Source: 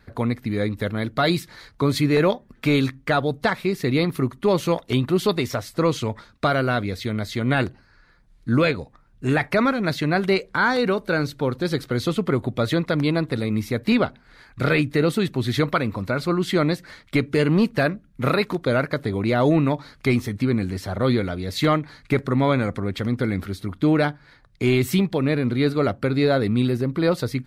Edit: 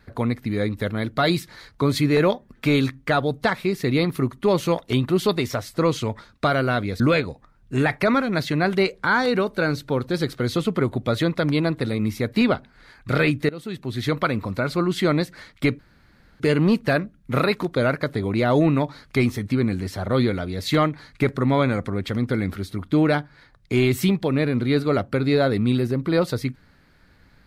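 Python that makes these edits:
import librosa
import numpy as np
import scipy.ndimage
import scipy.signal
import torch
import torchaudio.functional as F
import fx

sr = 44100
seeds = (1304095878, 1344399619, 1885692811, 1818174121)

y = fx.edit(x, sr, fx.cut(start_s=7.0, length_s=1.51),
    fx.fade_in_from(start_s=15.0, length_s=0.81, floor_db=-20.5),
    fx.insert_room_tone(at_s=17.3, length_s=0.61), tone=tone)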